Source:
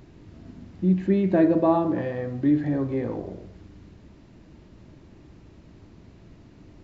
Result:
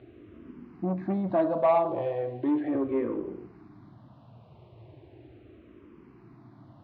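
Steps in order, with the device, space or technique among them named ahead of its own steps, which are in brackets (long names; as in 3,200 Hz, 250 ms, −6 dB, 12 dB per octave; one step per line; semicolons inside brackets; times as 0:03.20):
0:01.30–0:02.75: high-pass filter 220 Hz 12 dB per octave
barber-pole phaser into a guitar amplifier (frequency shifter mixed with the dry sound −0.37 Hz; soft clipping −21 dBFS, distortion −13 dB; loudspeaker in its box 100–3,600 Hz, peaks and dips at 120 Hz +8 dB, 180 Hz −6 dB, 360 Hz +5 dB, 710 Hz +7 dB, 1,100 Hz +6 dB, 1,800 Hz −4 dB)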